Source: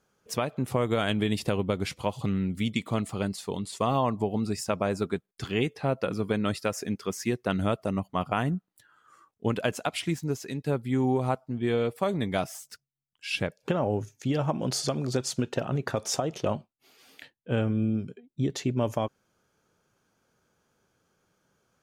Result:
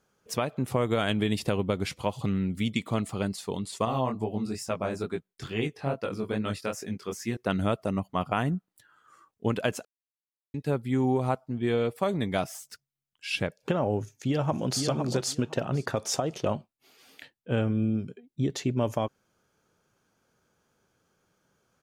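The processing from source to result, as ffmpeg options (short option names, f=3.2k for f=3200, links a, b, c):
-filter_complex "[0:a]asettb=1/sr,asplit=3[a][b][c];[a]atrim=end=3.854[d];[b]atrim=start=3.85:end=7.37,asetpts=PTS-STARTPTS,afade=t=in:d=0.004:c=qsin,afade=t=out:st=3.516:d=0.004:c=qsin,flanger=delay=17.5:depth=5.8:speed=2.3[e];[c]atrim=start=7.366[f];[d][e]acrossfade=d=0.004:c1=hsin:c2=qsin[g];[g][f]acrossfade=d=0.004:c1=qsin:c2=hsin,asplit=2[h][i];[i]afade=t=in:st=14:d=0.01,afade=t=out:st=14.83:d=0.01,aecho=0:1:510|1020|1530:0.530884|0.0796327|0.0119449[j];[h][j]amix=inputs=2:normalize=0,asplit=3[k][l][m];[k]atrim=end=9.85,asetpts=PTS-STARTPTS,afade=t=out:st=9.846:d=0.004:c=hsin[n];[l]atrim=start=9.85:end=10.54,asetpts=PTS-STARTPTS,volume=0[o];[m]atrim=start=10.54,asetpts=PTS-STARTPTS,afade=t=in:d=0.004:c=hsin[p];[n][o][p]concat=n=3:v=0:a=1"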